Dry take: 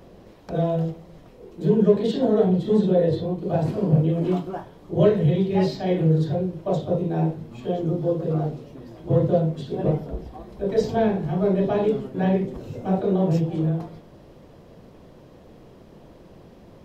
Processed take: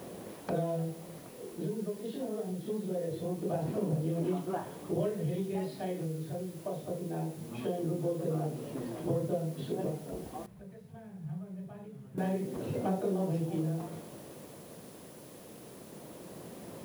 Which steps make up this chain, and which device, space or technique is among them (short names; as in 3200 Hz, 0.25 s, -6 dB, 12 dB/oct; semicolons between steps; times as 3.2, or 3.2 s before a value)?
medium wave at night (BPF 140–3500 Hz; compressor, threshold -33 dBFS, peak gain reduction 20 dB; tremolo 0.23 Hz, depth 49%; whine 10000 Hz -65 dBFS; white noise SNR 22 dB); 10.46–12.18 EQ curve 170 Hz 0 dB, 280 Hz -20 dB, 1600 Hz -10 dB, 4800 Hz -17 dB; gain +3.5 dB